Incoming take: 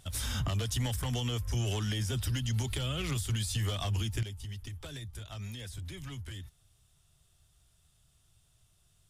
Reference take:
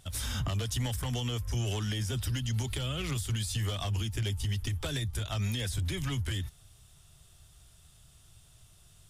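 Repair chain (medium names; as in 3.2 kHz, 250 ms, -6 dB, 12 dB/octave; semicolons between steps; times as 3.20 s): trim 0 dB, from 4.23 s +9.5 dB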